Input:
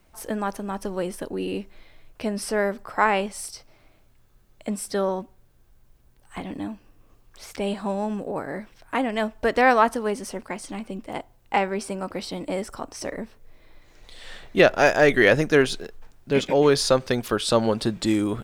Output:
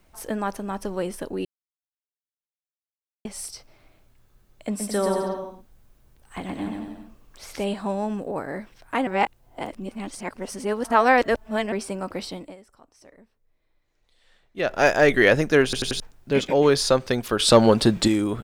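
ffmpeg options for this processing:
ffmpeg -i in.wav -filter_complex "[0:a]asplit=3[link_01][link_02][link_03];[link_01]afade=type=out:start_time=4.79:duration=0.02[link_04];[link_02]aecho=1:1:120|216|292.8|354.2|403.4:0.631|0.398|0.251|0.158|0.1,afade=type=in:start_time=4.79:duration=0.02,afade=type=out:start_time=7.63:duration=0.02[link_05];[link_03]afade=type=in:start_time=7.63:duration=0.02[link_06];[link_04][link_05][link_06]amix=inputs=3:normalize=0,asettb=1/sr,asplit=3[link_07][link_08][link_09];[link_07]atrim=end=17.394[link_10];[link_08]atrim=start=17.39:end=18.08,asetpts=PTS-STARTPTS,afade=type=in:duration=0.004:curve=qsin,afade=type=out:start_time=0.686:duration=0.004:curve=qsin,acontrast=72[link_11];[link_09]atrim=start=18.076[link_12];[link_10][link_11]acrossfade=duration=0.004:curve1=hsin:curve2=qsin[link_13];[link_13][link_12]acrossfade=duration=0.004:curve1=qsin:curve2=hsin,asplit=11[link_14][link_15][link_16][link_17][link_18][link_19][link_20][link_21][link_22][link_23][link_24];[link_14]atrim=end=1.45,asetpts=PTS-STARTPTS,afade=type=out:start_time=1.446:duration=0.004:curve=hsin[link_25];[link_15]atrim=start=1.45:end=3.25,asetpts=PTS-STARTPTS,volume=0[link_26];[link_16]atrim=start=3.25:end=9.072,asetpts=PTS-STARTPTS,afade=type=in:duration=0.004:curve=hsin[link_27];[link_17]atrim=start=9.068:end=11.722,asetpts=PTS-STARTPTS,areverse[link_28];[link_18]atrim=start=11.718:end=12.56,asetpts=PTS-STARTPTS,afade=type=out:start_time=0.532:duration=0.31:silence=0.1[link_29];[link_19]atrim=start=12.56:end=14.55,asetpts=PTS-STARTPTS,volume=-20dB[link_30];[link_20]atrim=start=14.55:end=15.732,asetpts=PTS-STARTPTS,afade=type=in:duration=0.31:silence=0.1[link_31];[link_21]atrim=start=15.638:end=15.732[link_32];[link_22]atrim=start=15.638:end=15.732[link_33];[link_23]atrim=start=15.638:end=15.732[link_34];[link_24]atrim=start=15.998[link_35];[link_25][link_26][link_27]concat=n=3:v=0:a=1[link_36];[link_36][link_28]acrossfade=duration=0.004:curve1=hsin:curve2=hsin[link_37];[link_29][link_30][link_31]concat=n=3:v=0:a=1[link_38];[link_37][link_38]acrossfade=duration=0.004:curve1=hsin:curve2=hsin[link_39];[link_39][link_32]acrossfade=duration=0.004:curve1=hsin:curve2=hsin[link_40];[link_40][link_33]acrossfade=duration=0.004:curve1=hsin:curve2=hsin[link_41];[link_41][link_34]acrossfade=duration=0.004:curve1=hsin:curve2=hsin[link_42];[link_42][link_35]acrossfade=duration=0.004:curve1=hsin:curve2=hsin" out.wav

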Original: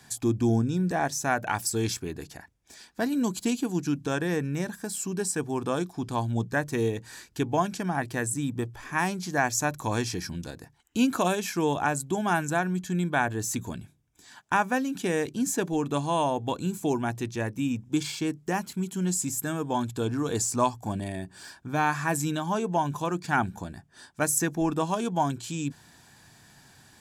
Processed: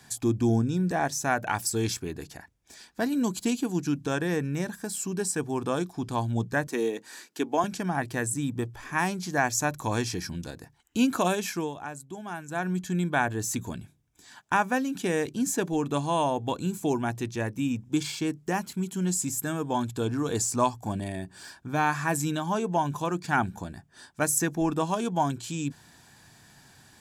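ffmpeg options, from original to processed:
ffmpeg -i in.wav -filter_complex "[0:a]asettb=1/sr,asplit=3[link_01][link_02][link_03];[link_01]atrim=end=6.674[link_04];[link_02]atrim=start=6.67:end=7.64,asetpts=PTS-STARTPTS,afade=type=in:duration=0.004:curve=qsin,afade=type=out:start_time=0.966:duration=0.004:curve=qsin,highpass=frequency=230:width=0.5412,highpass=frequency=230:width=1.3066[link_05];[link_03]atrim=start=7.636[link_06];[link_04][link_05]acrossfade=duration=0.004:curve1=hsin:curve2=qsin[link_07];[link_07][link_06]acrossfade=duration=0.004:curve1=qsin:curve2=hsin,asplit=3[link_08][link_09][link_10];[link_08]atrim=end=11.72,asetpts=PTS-STARTPTS,afade=type=out:start_time=11.5:duration=0.22:silence=0.266073[link_11];[link_09]atrim=start=11.72:end=12.48,asetpts=PTS-STARTPTS,volume=-11.5dB[link_12];[link_10]atrim=start=12.48,asetpts=PTS-STARTPTS,afade=type=in:duration=0.22:silence=0.266073[link_13];[link_11][link_12][link_13]concat=n=3:v=0:a=1" out.wav

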